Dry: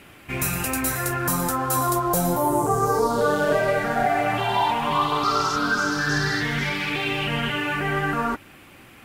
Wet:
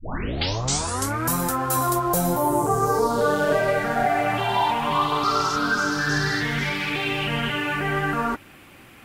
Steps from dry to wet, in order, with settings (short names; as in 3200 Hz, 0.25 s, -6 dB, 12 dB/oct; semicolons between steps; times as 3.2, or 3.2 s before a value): tape start at the beginning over 1.34 s